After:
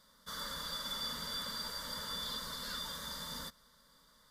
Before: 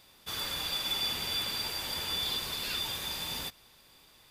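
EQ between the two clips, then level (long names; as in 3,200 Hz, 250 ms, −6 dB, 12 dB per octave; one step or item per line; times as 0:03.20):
parametric band 410 Hz −6 dB 0.65 octaves
high-shelf EQ 9,000 Hz −11.5 dB
phaser with its sweep stopped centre 510 Hz, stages 8
0.0 dB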